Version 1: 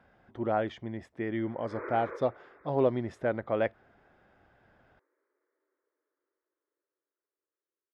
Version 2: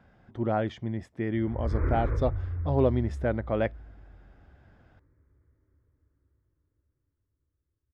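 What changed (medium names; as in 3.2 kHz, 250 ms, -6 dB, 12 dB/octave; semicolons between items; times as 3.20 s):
background: remove steep high-pass 360 Hz 36 dB/octave; master: add tone controls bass +9 dB, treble +5 dB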